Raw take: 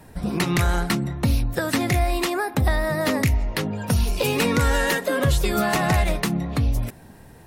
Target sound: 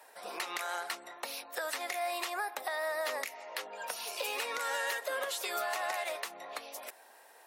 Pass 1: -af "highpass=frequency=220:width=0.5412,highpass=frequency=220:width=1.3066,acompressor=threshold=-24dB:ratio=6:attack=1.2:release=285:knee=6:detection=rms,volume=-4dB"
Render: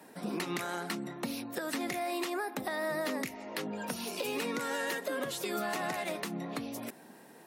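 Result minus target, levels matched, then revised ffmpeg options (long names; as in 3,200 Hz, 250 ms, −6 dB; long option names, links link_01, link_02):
250 Hz band +18.5 dB
-af "highpass=frequency=560:width=0.5412,highpass=frequency=560:width=1.3066,acompressor=threshold=-24dB:ratio=6:attack=1.2:release=285:knee=6:detection=rms,volume=-4dB"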